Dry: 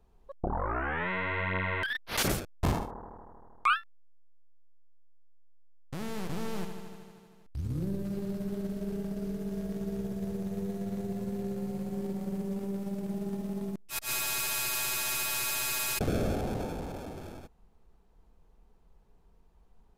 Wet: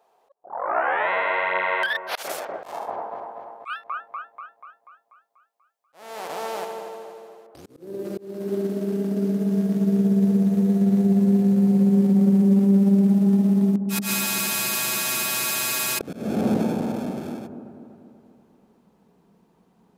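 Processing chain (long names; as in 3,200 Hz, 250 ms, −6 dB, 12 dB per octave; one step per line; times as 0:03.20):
high-pass filter sweep 650 Hz → 200 Hz, 0:06.47–0:09.80
delay with a low-pass on its return 243 ms, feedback 55%, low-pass 1,000 Hz, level −7.5 dB
volume swells 344 ms
level +7 dB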